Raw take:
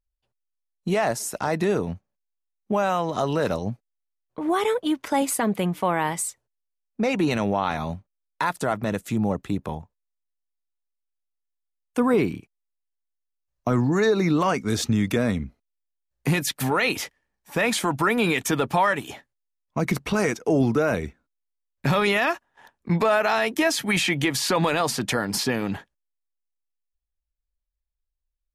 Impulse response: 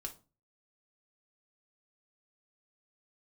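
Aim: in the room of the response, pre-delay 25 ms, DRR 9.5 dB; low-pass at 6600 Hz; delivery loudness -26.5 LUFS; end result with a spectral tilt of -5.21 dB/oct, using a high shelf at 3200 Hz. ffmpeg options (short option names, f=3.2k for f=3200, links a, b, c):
-filter_complex "[0:a]lowpass=6.6k,highshelf=f=3.2k:g=-7.5,asplit=2[a][b];[1:a]atrim=start_sample=2205,adelay=25[c];[b][c]afir=irnorm=-1:irlink=0,volume=-7dB[d];[a][d]amix=inputs=2:normalize=0,volume=-2dB"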